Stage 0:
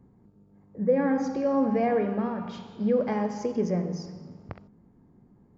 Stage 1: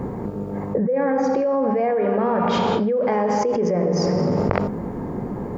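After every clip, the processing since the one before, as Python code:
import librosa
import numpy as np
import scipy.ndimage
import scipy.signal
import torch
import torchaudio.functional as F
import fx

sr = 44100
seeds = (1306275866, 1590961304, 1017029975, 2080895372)

y = fx.graphic_eq_10(x, sr, hz=(500, 1000, 2000), db=(10, 6, 5))
y = fx.env_flatten(y, sr, amount_pct=100)
y = y * 10.0 ** (-13.0 / 20.0)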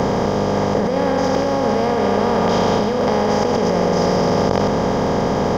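y = fx.bin_compress(x, sr, power=0.2)
y = fx.leveller(y, sr, passes=1)
y = y * 10.0 ** (-8.0 / 20.0)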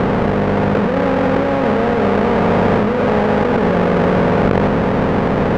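y = fx.halfwave_hold(x, sr)
y = scipy.signal.sosfilt(scipy.signal.butter(2, 1800.0, 'lowpass', fs=sr, output='sos'), y)
y = y * 10.0 ** (-1.0 / 20.0)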